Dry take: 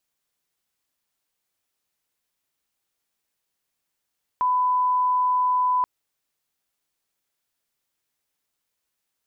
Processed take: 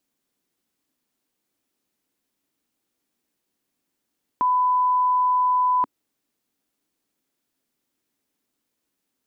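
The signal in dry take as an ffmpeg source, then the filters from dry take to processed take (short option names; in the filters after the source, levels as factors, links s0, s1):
-f lavfi -i "sine=f=1000:d=1.43:r=44100,volume=0.06dB"
-af "equalizer=f=270:t=o:w=1.3:g=15"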